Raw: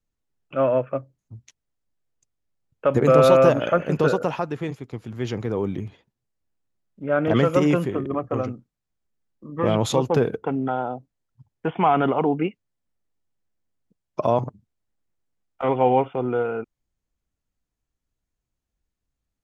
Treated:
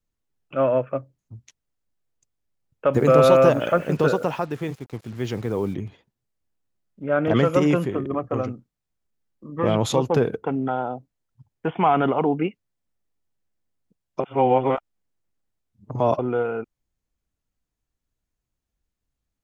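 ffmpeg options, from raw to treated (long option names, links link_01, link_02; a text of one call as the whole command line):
ffmpeg -i in.wav -filter_complex "[0:a]asplit=3[link_01][link_02][link_03];[link_01]afade=type=out:start_time=2.93:duration=0.02[link_04];[link_02]acrusher=bits=7:mix=0:aa=0.5,afade=type=in:start_time=2.93:duration=0.02,afade=type=out:start_time=5.73:duration=0.02[link_05];[link_03]afade=type=in:start_time=5.73:duration=0.02[link_06];[link_04][link_05][link_06]amix=inputs=3:normalize=0,asplit=3[link_07][link_08][link_09];[link_07]atrim=end=14.202[link_10];[link_08]atrim=start=14.198:end=16.192,asetpts=PTS-STARTPTS,areverse[link_11];[link_09]atrim=start=16.188[link_12];[link_10][link_11]acrossfade=duration=0.004:curve1=hsin:curve2=hsin[link_13];[link_13][link_12]acrossfade=duration=0.004:curve1=hsin:curve2=hsin" out.wav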